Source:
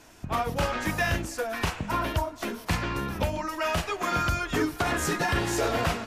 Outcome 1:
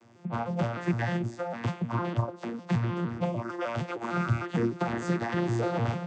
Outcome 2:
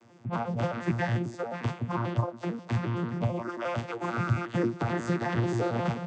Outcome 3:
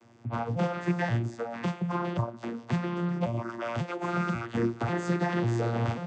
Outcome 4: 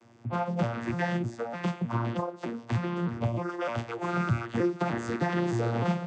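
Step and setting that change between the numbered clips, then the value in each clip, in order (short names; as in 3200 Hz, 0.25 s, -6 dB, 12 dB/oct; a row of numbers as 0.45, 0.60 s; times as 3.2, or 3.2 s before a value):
arpeggiated vocoder, a note every: 152, 89, 542, 306 ms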